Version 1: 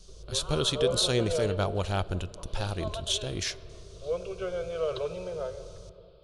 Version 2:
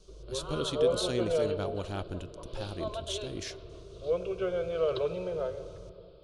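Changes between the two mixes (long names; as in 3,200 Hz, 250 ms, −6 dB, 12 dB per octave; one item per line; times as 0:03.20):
speech −8.5 dB
master: add parametric band 280 Hz +8.5 dB 0.81 octaves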